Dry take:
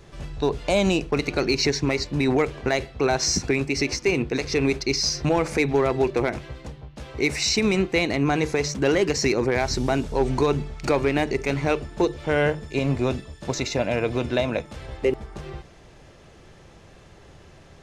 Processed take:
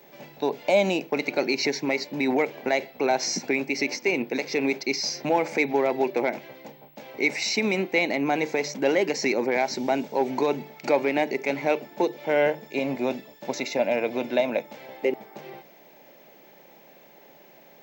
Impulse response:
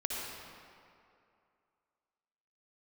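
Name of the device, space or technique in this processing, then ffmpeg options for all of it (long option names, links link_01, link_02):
old television with a line whistle: -af "highpass=frequency=190:width=0.5412,highpass=frequency=190:width=1.3066,equalizer=frequency=250:width_type=q:width=4:gain=3,equalizer=frequency=580:width_type=q:width=4:gain=7,equalizer=frequency=850:width_type=q:width=4:gain=8,equalizer=frequency=1200:width_type=q:width=4:gain=-6,equalizer=frequency=2200:width_type=q:width=4:gain=7,lowpass=frequency=7100:width=0.5412,lowpass=frequency=7100:width=1.3066,aeval=exprs='val(0)+0.00316*sin(2*PI*15734*n/s)':channel_layout=same,volume=-4.5dB"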